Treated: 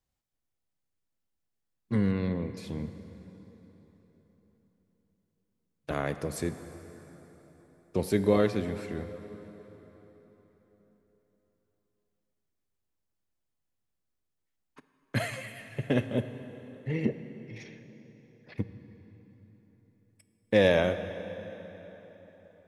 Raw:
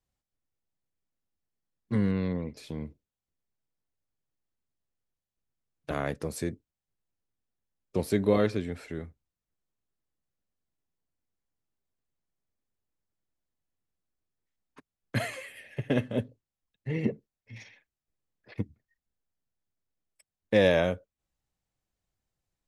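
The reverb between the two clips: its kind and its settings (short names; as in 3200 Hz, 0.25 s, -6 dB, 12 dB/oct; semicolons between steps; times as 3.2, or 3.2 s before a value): plate-style reverb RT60 4.2 s, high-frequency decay 0.75×, DRR 10 dB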